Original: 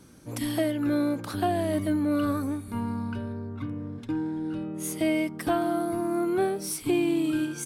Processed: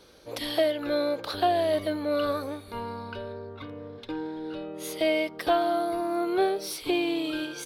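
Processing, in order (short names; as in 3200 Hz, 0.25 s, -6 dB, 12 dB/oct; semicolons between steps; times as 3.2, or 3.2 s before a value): ten-band EQ 125 Hz -12 dB, 250 Hz -11 dB, 500 Hz +10 dB, 4000 Hz +12 dB, 8000 Hz -11 dB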